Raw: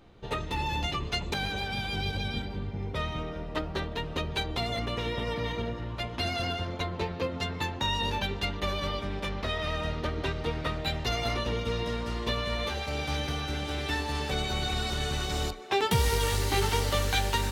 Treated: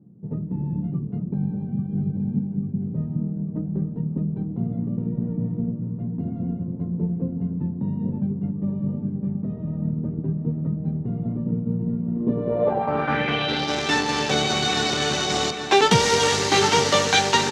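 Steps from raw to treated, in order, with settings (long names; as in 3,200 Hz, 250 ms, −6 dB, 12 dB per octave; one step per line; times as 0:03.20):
high-pass filter 140 Hz 24 dB per octave
high-shelf EQ 4,200 Hz −7.5 dB
in parallel at −12 dB: bit reduction 5 bits
on the sum: low-pass filter sweep 180 Hz → 6,400 Hz, 0:12.08–0:13.76
on a send: repeating echo 841 ms, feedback 59%, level −11.5 dB
on the sum: level +8.5 dB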